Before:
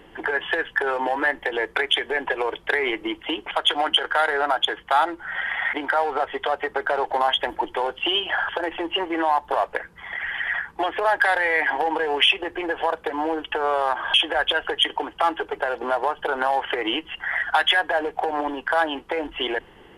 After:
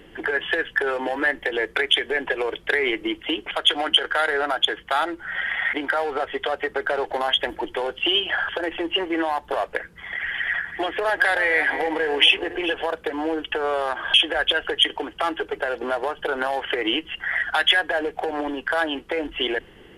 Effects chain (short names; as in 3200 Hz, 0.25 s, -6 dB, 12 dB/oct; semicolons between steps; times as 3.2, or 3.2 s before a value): 10.42–12.74 regenerating reverse delay 0.207 s, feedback 41%, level -11.5 dB; bell 920 Hz -9 dB 0.9 oct; gain +2.5 dB